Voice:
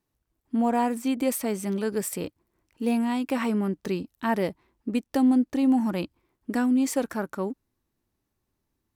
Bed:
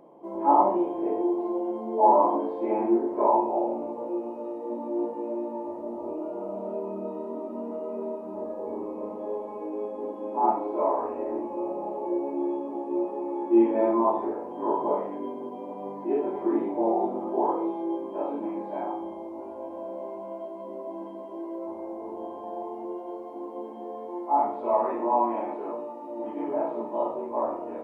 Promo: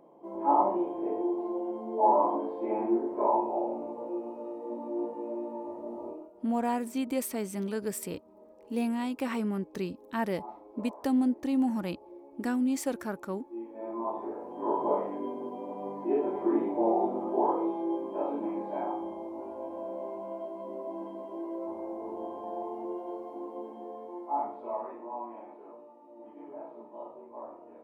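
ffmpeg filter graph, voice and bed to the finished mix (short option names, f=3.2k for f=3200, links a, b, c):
-filter_complex "[0:a]adelay=5900,volume=-5.5dB[a];[1:a]volume=15dB,afade=t=out:st=6.03:d=0.27:silence=0.149624,afade=t=in:st=13.73:d=1.21:silence=0.105925,afade=t=out:st=23.12:d=1.92:silence=0.199526[b];[a][b]amix=inputs=2:normalize=0"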